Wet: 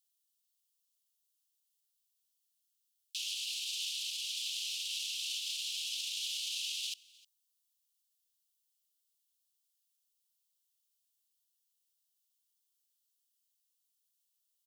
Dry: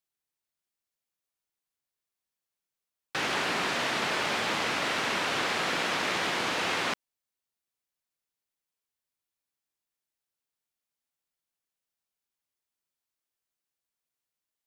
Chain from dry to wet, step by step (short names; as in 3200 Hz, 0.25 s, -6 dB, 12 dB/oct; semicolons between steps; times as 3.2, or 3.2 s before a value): limiter -27.5 dBFS, peak gain reduction 11 dB; steep high-pass 2800 Hz 72 dB/oct; high shelf 6500 Hz +7 dB; echo 0.309 s -23.5 dB; gain +3 dB